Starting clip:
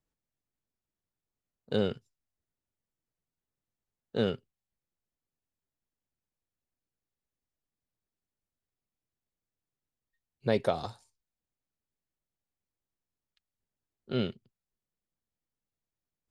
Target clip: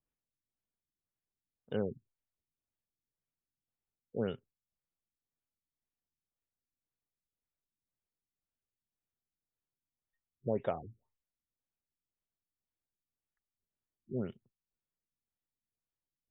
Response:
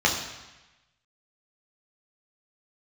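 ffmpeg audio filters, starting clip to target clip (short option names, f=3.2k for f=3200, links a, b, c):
-af "afftfilt=real='re*lt(b*sr/1024,340*pow(3800/340,0.5+0.5*sin(2*PI*1.9*pts/sr)))':imag='im*lt(b*sr/1024,340*pow(3800/340,0.5+0.5*sin(2*PI*1.9*pts/sr)))':win_size=1024:overlap=0.75,volume=-6dB"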